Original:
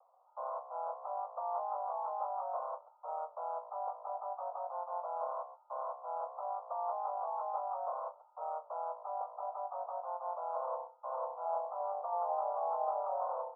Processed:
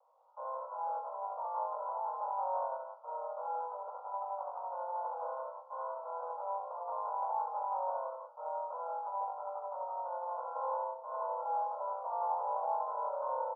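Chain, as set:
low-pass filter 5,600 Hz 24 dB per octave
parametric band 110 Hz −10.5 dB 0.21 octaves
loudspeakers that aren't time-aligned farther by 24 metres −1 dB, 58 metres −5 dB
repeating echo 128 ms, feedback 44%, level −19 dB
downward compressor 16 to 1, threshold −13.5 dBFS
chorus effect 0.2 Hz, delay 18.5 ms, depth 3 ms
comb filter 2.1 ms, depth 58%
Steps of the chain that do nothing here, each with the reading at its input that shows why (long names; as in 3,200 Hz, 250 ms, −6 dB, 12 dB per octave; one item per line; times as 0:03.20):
low-pass filter 5,600 Hz: nothing at its input above 1,400 Hz
parametric band 110 Hz: nothing at its input below 430 Hz
downward compressor, threshold −13.5 dBFS: peak of its input −19.5 dBFS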